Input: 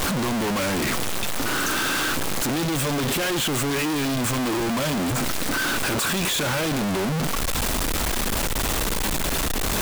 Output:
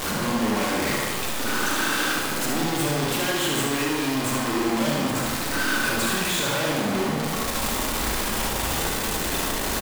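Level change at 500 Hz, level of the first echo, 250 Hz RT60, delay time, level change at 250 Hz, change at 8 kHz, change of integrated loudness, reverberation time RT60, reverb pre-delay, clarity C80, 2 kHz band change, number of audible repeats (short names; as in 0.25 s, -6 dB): 0.0 dB, -5.0 dB, 1.2 s, 75 ms, -0.5 dB, -1.0 dB, -0.5 dB, 1.3 s, 28 ms, 2.0 dB, +0.5 dB, 1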